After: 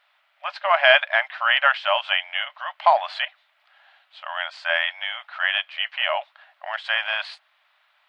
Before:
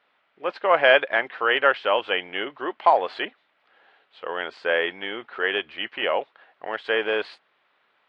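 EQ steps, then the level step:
linear-phase brick-wall high-pass 570 Hz
high-shelf EQ 2,600 Hz +9 dB
0.0 dB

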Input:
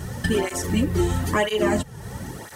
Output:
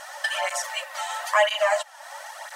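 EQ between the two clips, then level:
linear-phase brick-wall high-pass 550 Hz
high-shelf EQ 9,400 Hz −10 dB
parametric band 12,000 Hz −2.5 dB 0.73 octaves
+4.0 dB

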